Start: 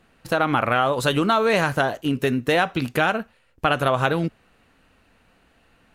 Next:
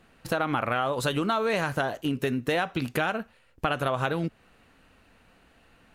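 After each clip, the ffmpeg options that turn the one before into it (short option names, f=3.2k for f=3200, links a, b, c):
-af "acompressor=threshold=-28dB:ratio=2"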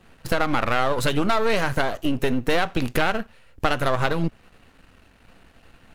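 -af "aeval=exprs='if(lt(val(0),0),0.251*val(0),val(0))':c=same,lowshelf=f=140:g=5.5,volume=7.5dB"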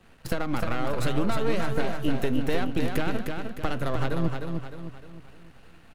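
-filter_complex "[0:a]acrossover=split=430[a][b];[b]acompressor=threshold=-34dB:ratio=2[c];[a][c]amix=inputs=2:normalize=0,aecho=1:1:306|612|918|1224|1530:0.562|0.247|0.109|0.0479|0.0211,volume=-3dB"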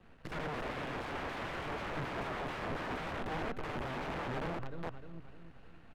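-filter_complex "[0:a]aeval=exprs='(mod(25.1*val(0)+1,2)-1)/25.1':c=same,acrossover=split=3100[a][b];[b]acompressor=threshold=-43dB:ratio=4:attack=1:release=60[c];[a][c]amix=inputs=2:normalize=0,aemphasis=mode=reproduction:type=75fm,volume=-4.5dB"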